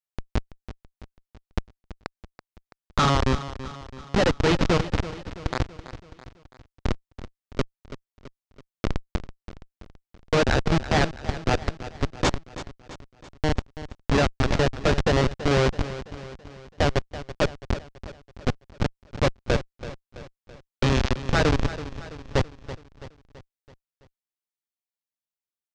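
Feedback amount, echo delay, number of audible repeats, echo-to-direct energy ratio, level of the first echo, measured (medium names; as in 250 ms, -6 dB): 53%, 331 ms, 4, -12.5 dB, -14.0 dB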